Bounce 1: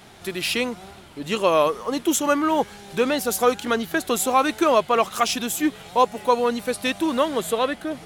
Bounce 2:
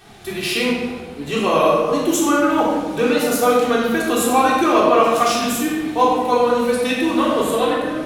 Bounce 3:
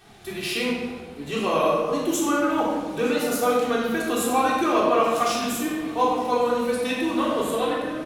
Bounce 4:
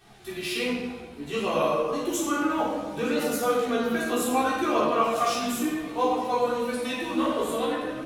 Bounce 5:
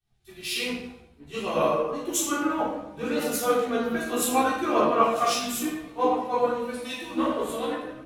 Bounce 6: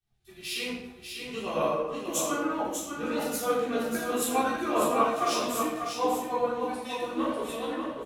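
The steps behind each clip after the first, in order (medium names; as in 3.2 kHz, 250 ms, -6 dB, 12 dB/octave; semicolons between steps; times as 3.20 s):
simulated room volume 1100 m³, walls mixed, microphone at 3.6 m; trim -3 dB
delay 911 ms -21.5 dB; trim -6 dB
chorus voices 2, 0.62 Hz, delay 15 ms, depth 1.8 ms
three bands expanded up and down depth 100%
delay 594 ms -6 dB; trim -4 dB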